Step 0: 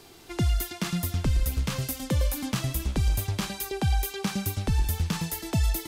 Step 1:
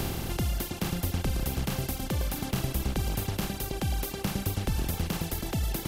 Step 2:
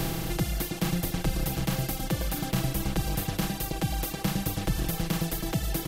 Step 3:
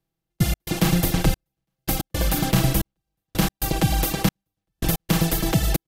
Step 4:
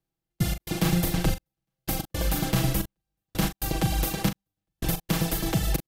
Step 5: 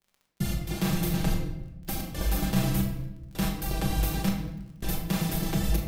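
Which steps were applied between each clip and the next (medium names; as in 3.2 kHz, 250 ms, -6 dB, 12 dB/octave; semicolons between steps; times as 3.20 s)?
spectral levelling over time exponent 0.2; reverb removal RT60 1.7 s; trim -7 dB
comb 6.2 ms, depth 82%
trance gate "...x.xxxxx." 112 bpm -60 dB; trim +8.5 dB
doubling 40 ms -9.5 dB; trim -5 dB
crackle 35 per s -38 dBFS; simulated room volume 370 m³, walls mixed, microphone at 1.2 m; trim -6 dB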